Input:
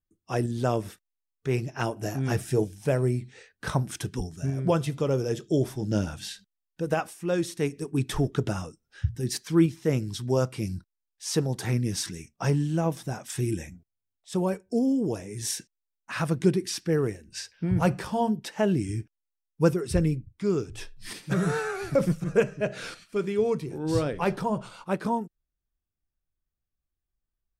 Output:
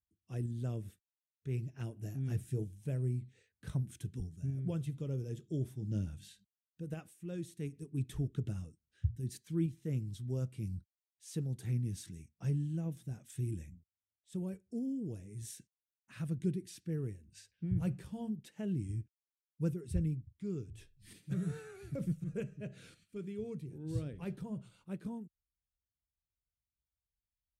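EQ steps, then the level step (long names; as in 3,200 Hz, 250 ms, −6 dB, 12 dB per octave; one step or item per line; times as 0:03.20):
high-pass filter 69 Hz
guitar amp tone stack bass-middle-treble 10-0-1
parametric band 5,200 Hz −8 dB 0.5 octaves
+5.5 dB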